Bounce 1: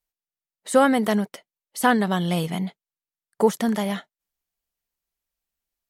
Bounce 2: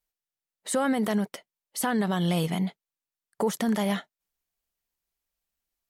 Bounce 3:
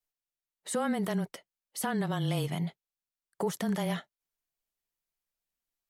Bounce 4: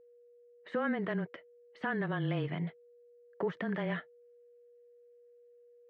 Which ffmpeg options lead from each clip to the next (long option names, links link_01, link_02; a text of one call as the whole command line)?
ffmpeg -i in.wav -af "alimiter=limit=-17dB:level=0:latency=1:release=70" out.wav
ffmpeg -i in.wav -af "afreqshift=-19,volume=-5dB" out.wav
ffmpeg -i in.wav -af "highpass=120,equalizer=frequency=210:width_type=q:width=4:gain=-4,equalizer=frequency=320:width_type=q:width=4:gain=3,equalizer=frequency=820:width_type=q:width=4:gain=-6,equalizer=frequency=1700:width_type=q:width=4:gain=6,lowpass=frequency=2700:width=0.5412,lowpass=frequency=2700:width=1.3066,aeval=exprs='val(0)+0.00158*sin(2*PI*480*n/s)':channel_layout=same,volume=-1.5dB" out.wav